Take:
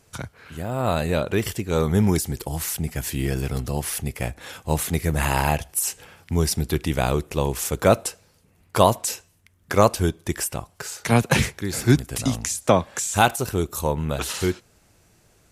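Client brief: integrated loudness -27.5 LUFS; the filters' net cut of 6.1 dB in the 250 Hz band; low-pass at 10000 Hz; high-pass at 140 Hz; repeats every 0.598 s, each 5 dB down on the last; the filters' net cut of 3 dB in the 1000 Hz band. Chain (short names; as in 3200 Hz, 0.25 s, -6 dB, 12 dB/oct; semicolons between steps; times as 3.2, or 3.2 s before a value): HPF 140 Hz; LPF 10000 Hz; bell 250 Hz -7.5 dB; bell 1000 Hz -3.5 dB; feedback echo 0.598 s, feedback 56%, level -5 dB; gain -2 dB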